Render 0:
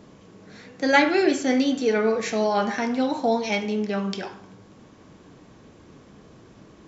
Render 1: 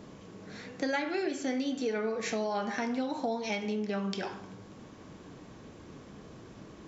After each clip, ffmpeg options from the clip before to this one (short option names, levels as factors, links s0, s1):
-af "acompressor=threshold=0.0316:ratio=5"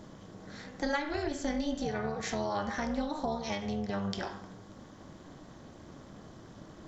-af "tremolo=f=300:d=0.788,superequalizer=7b=0.631:12b=0.501:16b=2.51,volume=1.41"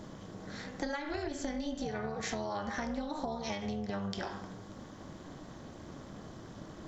-af "acompressor=threshold=0.0178:ratio=6,volume=1.33"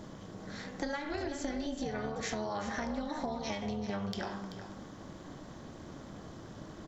-af "asoftclip=type=hard:threshold=0.0841,aecho=1:1:384:0.282"